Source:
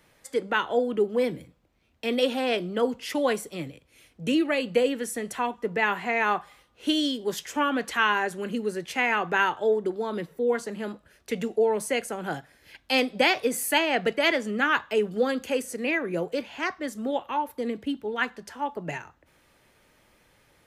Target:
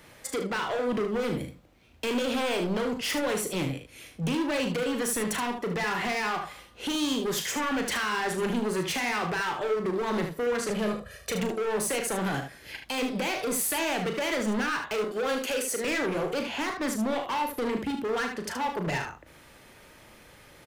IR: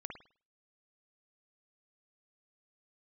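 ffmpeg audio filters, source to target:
-filter_complex "[0:a]asettb=1/sr,asplit=3[s0][s1][s2];[s0]atrim=end=10.704[s3];[s1]atrim=start=10.7:end=11.41,asetpts=PTS-STARTPTS,afade=t=in:d=0.004:c=qsin,afade=t=out:st=0.706:d=0.004:c=qsin,aecho=1:1:1.7:0.88,atrim=end_sample=31311[s4];[s2]atrim=start=11.406[s5];[s3][s4]acrossfade=d=0.004:c1=hsin:c2=qsin[s6];[s6][s5]acrossfade=d=0.004:c1=qsin:c2=hsin,asettb=1/sr,asplit=3[s7][s8][s9];[s7]atrim=end=15.044[s10];[s8]atrim=start=15.04:end=15.85,asetpts=PTS-STARTPTS,afade=t=in:d=0.004:c=qsin,afade=t=out:st=0.806:d=0.004:c=qsin,highpass=440[s11];[s9]atrim=start=15.846[s12];[s10][s11]acrossfade=d=0.004:c1=hsin:c2=qsin[s13];[s13][s12]acrossfade=d=0.004:c1=qsin:c2=hsin,acompressor=threshold=0.0501:ratio=6,alimiter=limit=0.0631:level=0:latency=1:release=37,asoftclip=type=hard:threshold=0.0178,aecho=1:1:37|75:0.398|0.398,volume=2.51"

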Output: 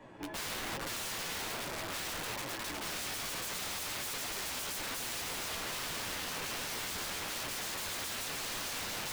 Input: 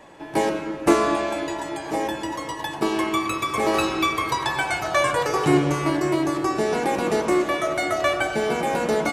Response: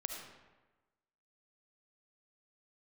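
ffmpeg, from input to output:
-filter_complex "[0:a]bass=f=250:g=8,treble=f=4000:g=-7,bandreject=f=50:t=h:w=6,bandreject=f=100:t=h:w=6,bandreject=f=150:t=h:w=6,acrossover=split=120[s0][s1];[s1]alimiter=limit=0.2:level=0:latency=1:release=31[s2];[s0][s2]amix=inputs=2:normalize=0,flanger=delay=16:depth=5.1:speed=0.41,aeval=exprs='(mod(31.6*val(0)+1,2)-1)/31.6':c=same,flanger=delay=7:depth=5.5:regen=-44:speed=1.2:shape=triangular"

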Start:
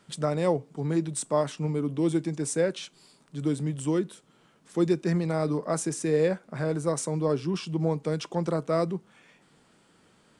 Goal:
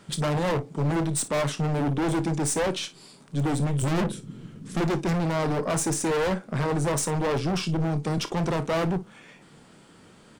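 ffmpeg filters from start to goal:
-filter_complex "[0:a]asplit=3[s0][s1][s2];[s0]afade=t=out:st=3.82:d=0.02[s3];[s1]asubboost=boost=10.5:cutoff=240,afade=t=in:st=3.82:d=0.02,afade=t=out:st=4.79:d=0.02[s4];[s2]afade=t=in:st=4.79:d=0.02[s5];[s3][s4][s5]amix=inputs=3:normalize=0,asettb=1/sr,asplit=3[s6][s7][s8];[s6]atrim=end=7.604[s9];[s7]atrim=start=7.6:end=8.18,asetpts=PTS-STARTPTS,afade=t=in:d=0.004:c=qsin,afade=t=out:st=0.576:d=0.004:c=qsin,acrossover=split=270|3000[s10][s11][s12];[s11]acompressor=threshold=0.0158:ratio=3[s13];[s10][s13][s12]amix=inputs=3:normalize=0[s14];[s8]atrim=start=8.176[s15];[s9][s14]acrossfade=d=0.004:c1=hsin:c2=qsin[s16];[s16][s15]acrossfade=d=0.004:c1=qsin:c2=hsin,lowshelf=f=340:g=4,aeval=exprs='(tanh(22.4*val(0)+0.35)-tanh(0.35))/22.4':c=same,aecho=1:1:28|55:0.224|0.15,aeval=exprs='0.0422*(abs(mod(val(0)/0.0422+3,4)-2)-1)':c=same,volume=2.51"

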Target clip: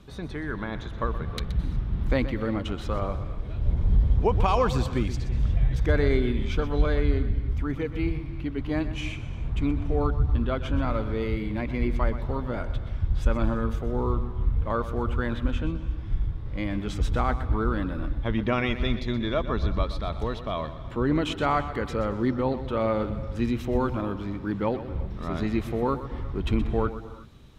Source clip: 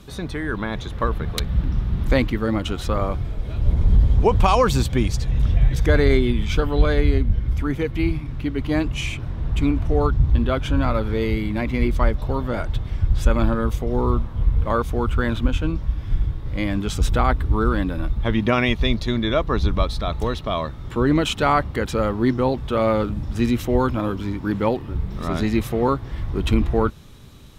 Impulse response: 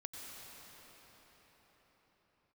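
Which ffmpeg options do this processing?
-filter_complex "[0:a]highshelf=f=6100:g=-11.5,asplit=2[s0][s1];[1:a]atrim=start_sample=2205,afade=t=out:st=0.3:d=0.01,atrim=end_sample=13671,adelay=124[s2];[s1][s2]afir=irnorm=-1:irlink=0,volume=0.447[s3];[s0][s3]amix=inputs=2:normalize=0,volume=0.501"

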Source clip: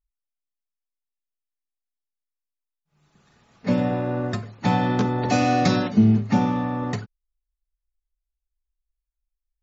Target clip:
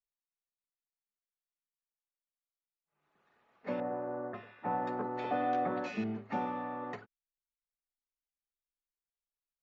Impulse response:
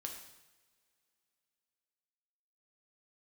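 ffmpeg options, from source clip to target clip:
-filter_complex "[0:a]acrossover=split=320 2800:gain=0.112 1 0.1[s0][s1][s2];[s0][s1][s2]amix=inputs=3:normalize=0,asettb=1/sr,asplit=3[s3][s4][s5];[s3]atrim=end=3.804[s6];[s4]atrim=start=3.8:end=6.04,asetpts=PTS-STARTPTS,afade=t=in:d=0.004:c=qsin,afade=t=out:st=2.236:d=0.004:c=qsin,acrossover=split=1700[s7][s8];[s8]adelay=540[s9];[s7][s9]amix=inputs=2:normalize=0,atrim=end_sample=98784[s10];[s5]atrim=start=6.036[s11];[s6][s10]acrossfade=d=0.004:c1=hsin:c2=qsin[s12];[s12][s11]acrossfade=d=0.004:c1=qsin:c2=hsin,volume=0.376"

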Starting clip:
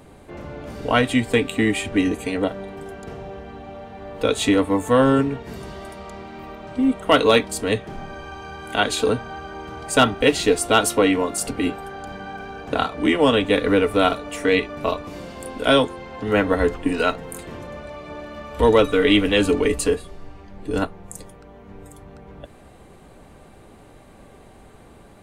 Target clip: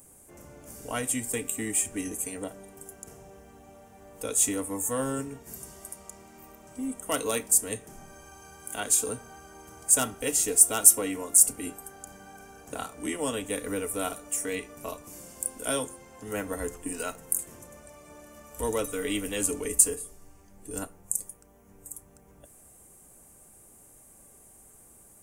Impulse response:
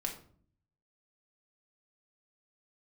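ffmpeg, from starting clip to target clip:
-filter_complex "[0:a]aexciter=amount=14.2:drive=6.8:freq=6100,asplit=2[s0][s1];[1:a]atrim=start_sample=2205,adelay=31[s2];[s1][s2]afir=irnorm=-1:irlink=0,volume=0.1[s3];[s0][s3]amix=inputs=2:normalize=0,volume=0.188"

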